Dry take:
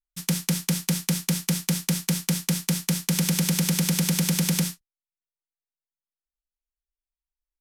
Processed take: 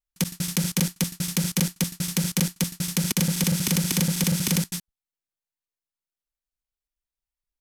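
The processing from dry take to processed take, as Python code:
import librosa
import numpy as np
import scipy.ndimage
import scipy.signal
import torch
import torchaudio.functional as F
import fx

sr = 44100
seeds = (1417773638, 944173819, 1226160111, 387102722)

y = fx.block_reorder(x, sr, ms=80.0, group=2)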